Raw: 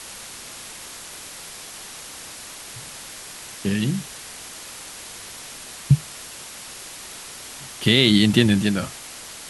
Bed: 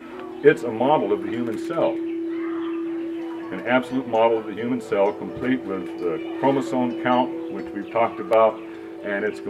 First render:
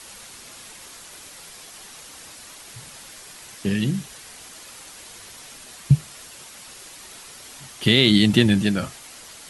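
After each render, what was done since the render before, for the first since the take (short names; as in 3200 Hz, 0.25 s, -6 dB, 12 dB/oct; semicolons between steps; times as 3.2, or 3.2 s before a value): denoiser 6 dB, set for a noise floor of -39 dBFS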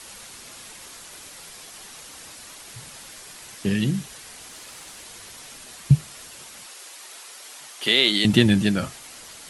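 4.49–5.02 CVSD 64 kbps; 6.66–8.25 HPF 460 Hz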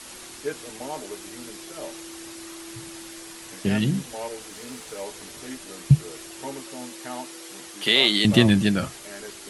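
add bed -16 dB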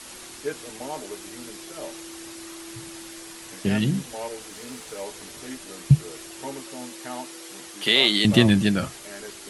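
nothing audible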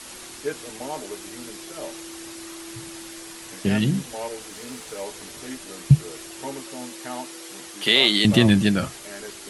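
gain +1.5 dB; limiter -3 dBFS, peak gain reduction 2.5 dB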